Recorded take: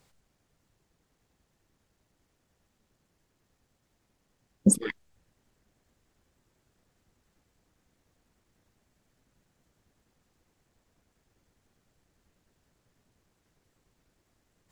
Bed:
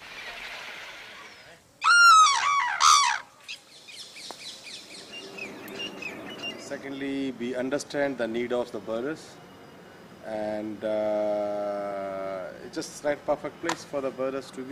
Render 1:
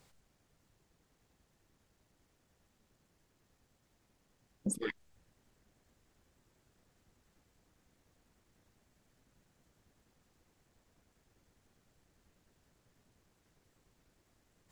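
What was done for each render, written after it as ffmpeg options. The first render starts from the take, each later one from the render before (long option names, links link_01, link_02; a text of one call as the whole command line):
ffmpeg -i in.wav -af "acompressor=threshold=-22dB:ratio=6,alimiter=level_in=1dB:limit=-24dB:level=0:latency=1:release=110,volume=-1dB" out.wav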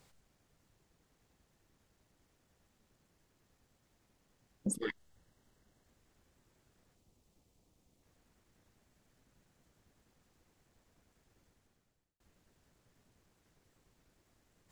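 ffmpeg -i in.wav -filter_complex "[0:a]asettb=1/sr,asplit=3[link_01][link_02][link_03];[link_01]atrim=end=4.754[link_04];[link_02]atrim=start=4.75:end=5.86,asetpts=PTS-STARTPTS,afade=type=in:duration=0.004:curve=qsin,afade=type=out:start_time=1.106:duration=0.004:curve=qsin,asuperstop=centerf=2400:order=4:qfactor=7.2[link_05];[link_03]atrim=start=5.856[link_06];[link_04][link_05]acrossfade=duration=0.004:curve1=hsin:curve2=qsin[link_07];[link_07][link_06]acrossfade=duration=0.004:curve1=qsin:curve2=hsin,asettb=1/sr,asplit=3[link_08][link_09][link_10];[link_08]atrim=end=6.954[link_11];[link_09]atrim=start=6.95:end=8.03,asetpts=PTS-STARTPTS,afade=type=in:duration=0.004:curve=qsin,afade=type=out:start_time=1.076:duration=0.004:curve=qsin,equalizer=frequency=1600:width=1.4:gain=-11.5[link_12];[link_10]atrim=start=8.026[link_13];[link_11][link_12]acrossfade=duration=0.004:curve1=hsin:curve2=qsin[link_14];[link_14][link_13]acrossfade=duration=0.004:curve1=qsin:curve2=hsin,asplit=2[link_15][link_16];[link_15]atrim=end=12.2,asetpts=PTS-STARTPTS,afade=type=out:start_time=11.45:duration=0.75[link_17];[link_16]atrim=start=12.2,asetpts=PTS-STARTPTS,afade=type=in:duration=0.004:curve=hsin[link_18];[link_17][link_18]concat=n=2:v=0:a=1" out.wav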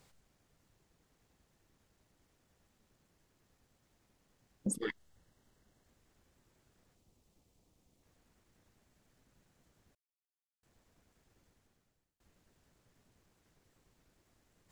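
ffmpeg -i in.wav -filter_complex "[0:a]asplit=3[link_01][link_02][link_03];[link_01]atrim=end=9.95,asetpts=PTS-STARTPTS,afade=type=out:start_time=9.946:duration=0.004:curve=hsin[link_04];[link_02]atrim=start=9.95:end=10.63,asetpts=PTS-STARTPTS,volume=0[link_05];[link_03]atrim=start=10.63,asetpts=PTS-STARTPTS,afade=type=in:duration=0.004:curve=hsin[link_06];[link_04][link_05][link_06]concat=n=3:v=0:a=1" out.wav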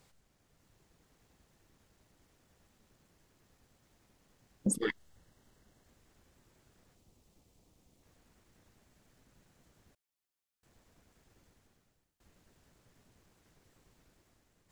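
ffmpeg -i in.wav -af "dynaudnorm=framelen=160:gausssize=7:maxgain=4.5dB" out.wav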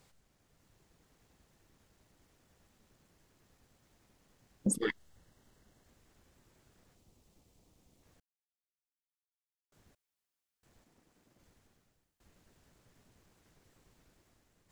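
ffmpeg -i in.wav -filter_complex "[0:a]asplit=3[link_01][link_02][link_03];[link_01]afade=type=out:start_time=10.84:duration=0.02[link_04];[link_02]aeval=exprs='val(0)*sin(2*PI*240*n/s)':channel_layout=same,afade=type=in:start_time=10.84:duration=0.02,afade=type=out:start_time=11.38:duration=0.02[link_05];[link_03]afade=type=in:start_time=11.38:duration=0.02[link_06];[link_04][link_05][link_06]amix=inputs=3:normalize=0,asplit=3[link_07][link_08][link_09];[link_07]atrim=end=8.2,asetpts=PTS-STARTPTS,afade=type=out:start_time=8.196:duration=0.004:curve=hsin[link_10];[link_08]atrim=start=8.2:end=9.72,asetpts=PTS-STARTPTS,volume=0[link_11];[link_09]atrim=start=9.72,asetpts=PTS-STARTPTS,afade=type=in:duration=0.004:curve=hsin[link_12];[link_10][link_11][link_12]concat=n=3:v=0:a=1" out.wav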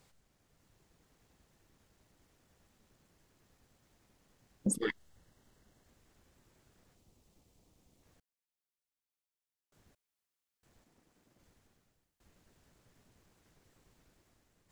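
ffmpeg -i in.wav -af "volume=-1dB" out.wav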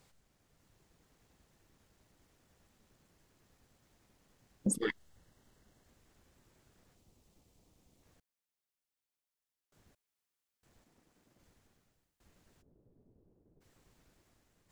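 ffmpeg -i in.wav -filter_complex "[0:a]asplit=3[link_01][link_02][link_03];[link_01]afade=type=out:start_time=12.61:duration=0.02[link_04];[link_02]lowpass=frequency=420:width_type=q:width=1.6,afade=type=in:start_time=12.61:duration=0.02,afade=type=out:start_time=13.6:duration=0.02[link_05];[link_03]afade=type=in:start_time=13.6:duration=0.02[link_06];[link_04][link_05][link_06]amix=inputs=3:normalize=0" out.wav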